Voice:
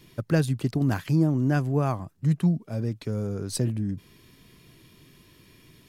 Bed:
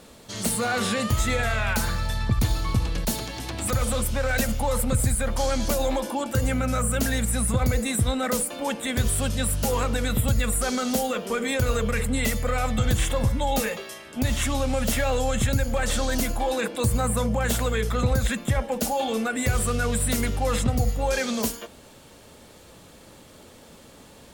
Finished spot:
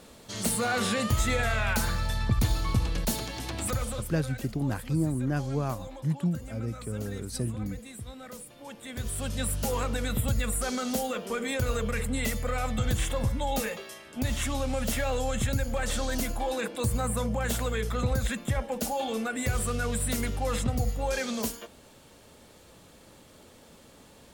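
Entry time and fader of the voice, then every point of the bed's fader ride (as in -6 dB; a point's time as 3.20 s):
3.80 s, -5.5 dB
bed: 3.60 s -2.5 dB
4.38 s -18.5 dB
8.55 s -18.5 dB
9.40 s -5 dB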